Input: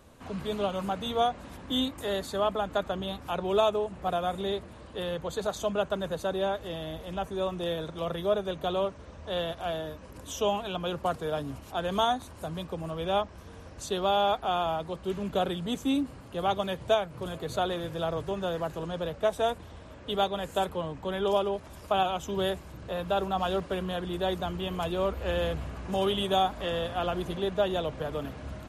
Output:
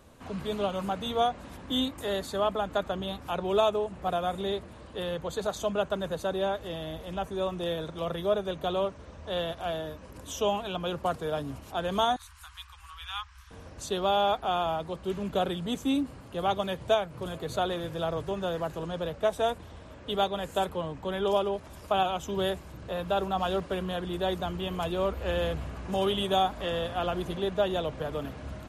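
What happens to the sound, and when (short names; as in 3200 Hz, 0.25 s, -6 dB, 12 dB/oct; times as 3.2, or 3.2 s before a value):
12.16–13.51 inverse Chebyshev band-stop 120–640 Hz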